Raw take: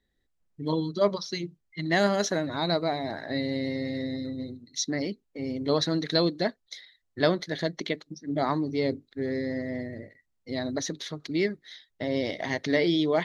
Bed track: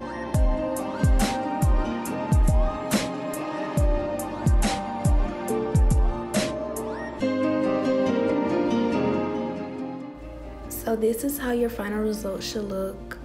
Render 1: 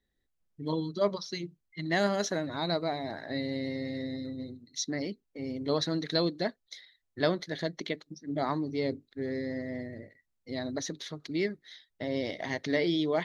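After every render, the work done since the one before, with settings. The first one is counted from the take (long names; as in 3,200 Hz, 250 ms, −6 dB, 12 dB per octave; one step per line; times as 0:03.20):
level −4 dB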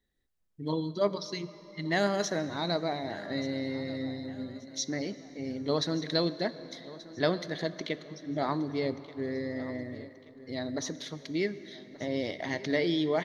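repeating echo 1,181 ms, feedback 40%, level −18 dB
dense smooth reverb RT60 4.1 s, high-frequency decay 0.7×, DRR 14 dB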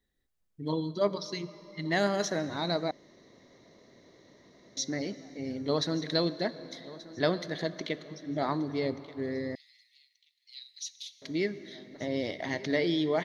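0:02.91–0:04.77: fill with room tone
0:09.55–0:11.22: Chebyshev high-pass filter 2,500 Hz, order 5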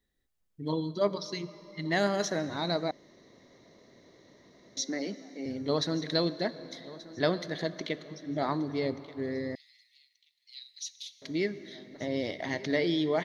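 0:04.81–0:05.46: Butterworth high-pass 170 Hz 72 dB per octave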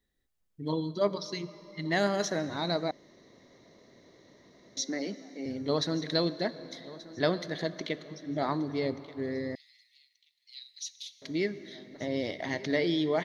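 no processing that can be heard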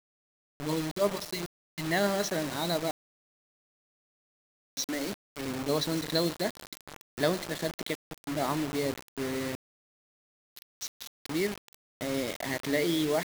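bit-depth reduction 6 bits, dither none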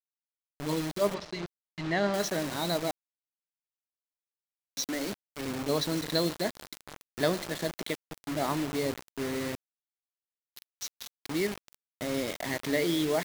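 0:01.14–0:02.14: high-frequency loss of the air 140 metres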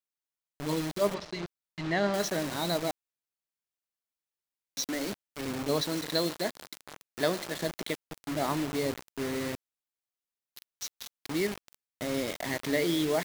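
0:05.81–0:07.56: low-shelf EQ 150 Hz −9 dB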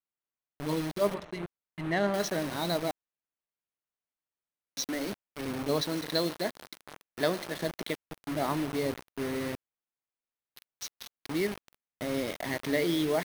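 adaptive Wiener filter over 9 samples
notch filter 7,300 Hz, Q 9.1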